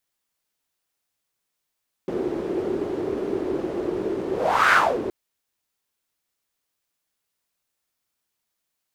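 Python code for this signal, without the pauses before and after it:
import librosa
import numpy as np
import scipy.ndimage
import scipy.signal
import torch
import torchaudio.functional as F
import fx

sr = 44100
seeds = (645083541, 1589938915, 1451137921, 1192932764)

y = fx.whoosh(sr, seeds[0], length_s=3.02, peak_s=2.64, rise_s=0.45, fall_s=0.3, ends_hz=370.0, peak_hz=1500.0, q=4.9, swell_db=10.5)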